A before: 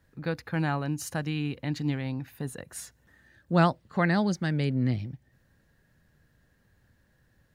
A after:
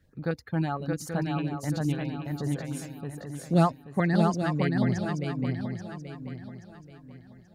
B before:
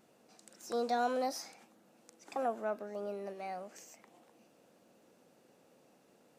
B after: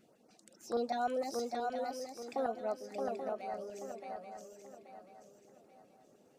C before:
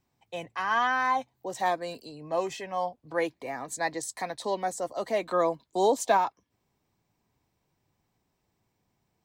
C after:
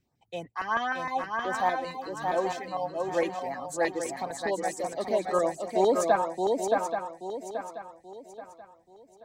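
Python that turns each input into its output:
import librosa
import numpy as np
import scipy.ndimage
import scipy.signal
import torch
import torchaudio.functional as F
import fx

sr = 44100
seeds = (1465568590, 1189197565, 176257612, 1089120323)

y = fx.notch(x, sr, hz=1000.0, q=21.0)
y = fx.dereverb_blind(y, sr, rt60_s=1.5)
y = fx.high_shelf(y, sr, hz=5400.0, db=-7.0)
y = fx.filter_lfo_notch(y, sr, shape='saw_up', hz=6.5, low_hz=760.0, high_hz=4100.0, q=0.82)
y = fx.echo_swing(y, sr, ms=831, ratio=3, feedback_pct=35, wet_db=-3.5)
y = F.gain(torch.from_numpy(y), 2.0).numpy()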